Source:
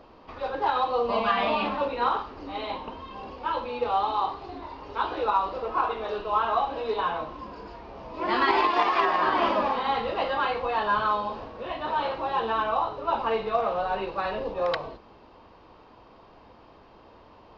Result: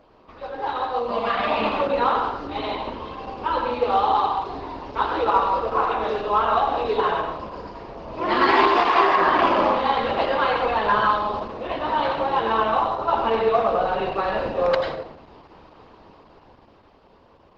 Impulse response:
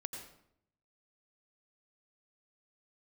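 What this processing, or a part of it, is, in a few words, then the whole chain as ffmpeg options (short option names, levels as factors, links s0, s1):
speakerphone in a meeting room: -filter_complex "[1:a]atrim=start_sample=2205[s0];[0:a][s0]afir=irnorm=-1:irlink=0,dynaudnorm=f=180:g=17:m=2.51" -ar 48000 -c:a libopus -b:a 12k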